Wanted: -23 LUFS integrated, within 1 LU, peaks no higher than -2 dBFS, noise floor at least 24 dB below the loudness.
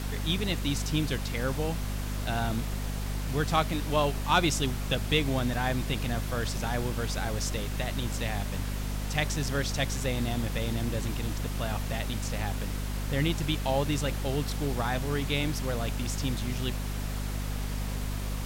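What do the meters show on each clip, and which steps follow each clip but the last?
hum 50 Hz; harmonics up to 250 Hz; hum level -30 dBFS; noise floor -33 dBFS; noise floor target -55 dBFS; loudness -30.5 LUFS; peak -12.0 dBFS; loudness target -23.0 LUFS
-> notches 50/100/150/200/250 Hz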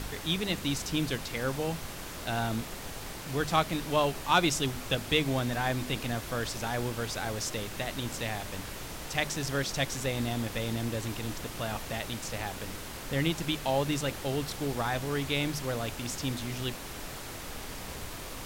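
hum none; noise floor -41 dBFS; noise floor target -56 dBFS
-> noise print and reduce 15 dB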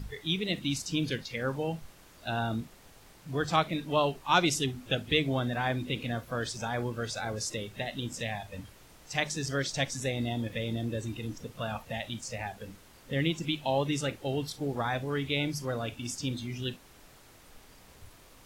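noise floor -56 dBFS; loudness -32.0 LUFS; peak -12.5 dBFS; loudness target -23.0 LUFS
-> gain +9 dB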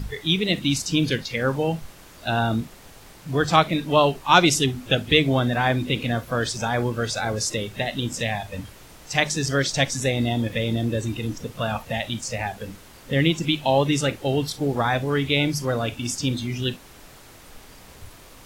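loudness -23.0 LUFS; peak -3.5 dBFS; noise floor -47 dBFS

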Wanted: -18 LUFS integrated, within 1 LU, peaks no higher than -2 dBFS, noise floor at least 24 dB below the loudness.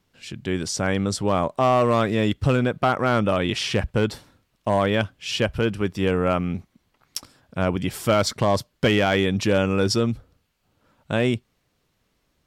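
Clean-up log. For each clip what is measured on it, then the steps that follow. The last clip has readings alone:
clipped 0.7%; flat tops at -12.0 dBFS; loudness -22.5 LUFS; peak -12.0 dBFS; loudness target -18.0 LUFS
-> clip repair -12 dBFS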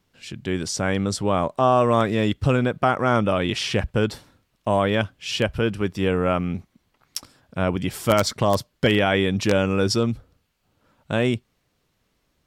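clipped 0.0%; loudness -22.5 LUFS; peak -3.0 dBFS; loudness target -18.0 LUFS
-> gain +4.5 dB; limiter -2 dBFS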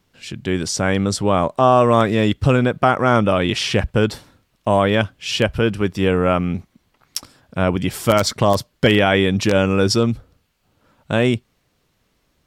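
loudness -18.0 LUFS; peak -2.0 dBFS; noise floor -66 dBFS

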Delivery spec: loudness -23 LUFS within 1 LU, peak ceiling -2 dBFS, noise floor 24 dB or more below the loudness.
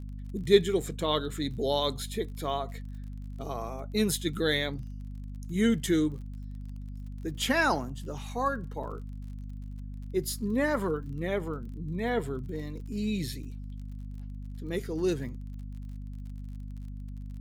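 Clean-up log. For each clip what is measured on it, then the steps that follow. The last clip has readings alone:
ticks 39/s; hum 50 Hz; harmonics up to 250 Hz; hum level -37 dBFS; loudness -30.5 LUFS; peak -7.5 dBFS; loudness target -23.0 LUFS
-> de-click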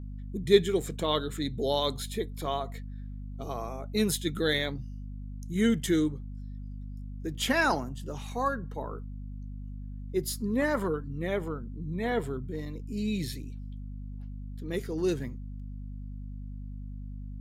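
ticks 0.23/s; hum 50 Hz; harmonics up to 250 Hz; hum level -37 dBFS
-> de-hum 50 Hz, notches 5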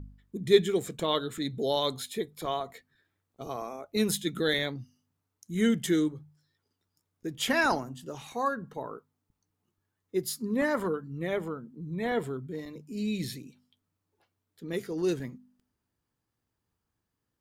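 hum none; loudness -30.5 LUFS; peak -8.0 dBFS; loudness target -23.0 LUFS
-> gain +7.5 dB; limiter -2 dBFS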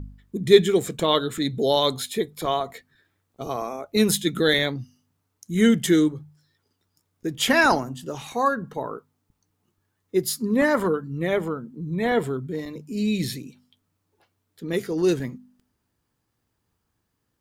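loudness -23.0 LUFS; peak -2.0 dBFS; noise floor -76 dBFS

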